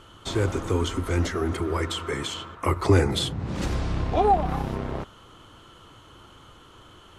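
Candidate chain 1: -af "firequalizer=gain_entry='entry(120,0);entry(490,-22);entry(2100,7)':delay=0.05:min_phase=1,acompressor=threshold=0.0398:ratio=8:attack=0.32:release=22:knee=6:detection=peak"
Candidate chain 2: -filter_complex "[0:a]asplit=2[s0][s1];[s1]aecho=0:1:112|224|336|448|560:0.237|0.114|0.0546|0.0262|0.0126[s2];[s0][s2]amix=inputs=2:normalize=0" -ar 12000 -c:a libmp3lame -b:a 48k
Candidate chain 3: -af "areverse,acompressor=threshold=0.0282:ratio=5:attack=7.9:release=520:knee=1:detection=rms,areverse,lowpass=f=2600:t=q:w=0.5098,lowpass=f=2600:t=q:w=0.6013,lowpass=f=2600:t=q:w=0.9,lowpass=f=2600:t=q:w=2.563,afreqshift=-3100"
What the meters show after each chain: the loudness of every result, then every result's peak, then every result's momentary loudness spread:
-33.5 LUFS, -26.0 LUFS, -33.5 LUFS; -23.0 dBFS, -6.5 dBFS, -21.5 dBFS; 15 LU, 10 LU, 16 LU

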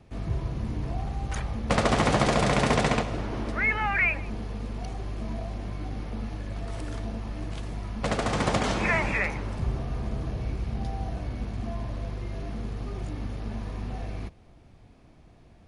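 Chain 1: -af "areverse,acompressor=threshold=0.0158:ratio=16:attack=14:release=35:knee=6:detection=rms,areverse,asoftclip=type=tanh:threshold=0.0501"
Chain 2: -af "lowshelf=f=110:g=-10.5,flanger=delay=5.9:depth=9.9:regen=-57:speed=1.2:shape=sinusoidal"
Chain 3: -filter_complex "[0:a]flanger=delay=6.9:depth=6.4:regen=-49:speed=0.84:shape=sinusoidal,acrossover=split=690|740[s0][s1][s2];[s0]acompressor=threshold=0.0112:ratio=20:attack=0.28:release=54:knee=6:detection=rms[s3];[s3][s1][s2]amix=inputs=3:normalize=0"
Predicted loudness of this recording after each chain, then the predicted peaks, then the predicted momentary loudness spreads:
-40.0 LUFS, -35.0 LUFS, -36.5 LUFS; -27.5 dBFS, -14.0 dBFS, -14.5 dBFS; 4 LU, 16 LU, 16 LU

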